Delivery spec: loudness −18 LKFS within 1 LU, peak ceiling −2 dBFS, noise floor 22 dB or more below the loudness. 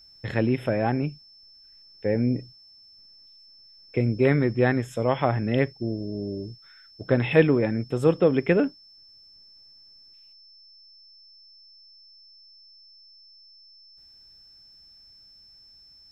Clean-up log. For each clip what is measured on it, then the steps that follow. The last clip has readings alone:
interfering tone 5,300 Hz; level of the tone −50 dBFS; integrated loudness −24.5 LKFS; sample peak −3.5 dBFS; target loudness −18.0 LKFS
→ notch filter 5,300 Hz, Q 30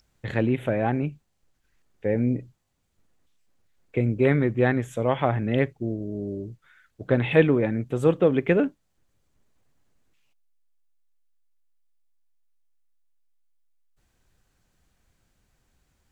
interfering tone none found; integrated loudness −24.5 LKFS; sample peak −3.5 dBFS; target loudness −18.0 LKFS
→ level +6.5 dB
brickwall limiter −2 dBFS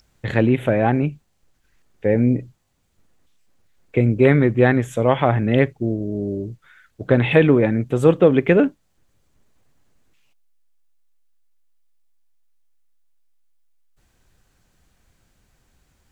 integrated loudness −18.5 LKFS; sample peak −2.0 dBFS; background noise floor −65 dBFS

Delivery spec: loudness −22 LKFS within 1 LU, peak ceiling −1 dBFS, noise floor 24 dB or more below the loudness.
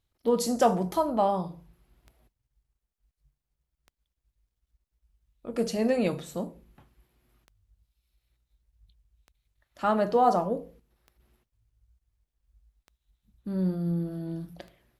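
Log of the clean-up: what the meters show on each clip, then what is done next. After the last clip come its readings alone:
number of clicks 9; integrated loudness −28.0 LKFS; sample peak −9.5 dBFS; target loudness −22.0 LKFS
→ click removal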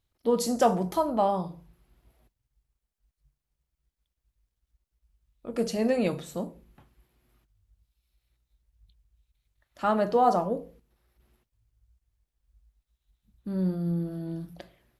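number of clicks 0; integrated loudness −28.0 LKFS; sample peak −9.5 dBFS; target loudness −22.0 LKFS
→ level +6 dB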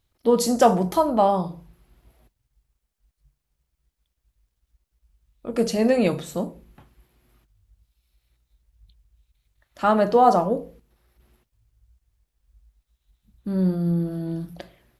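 integrated loudness −22.0 LKFS; sample peak −3.5 dBFS; background noise floor −79 dBFS

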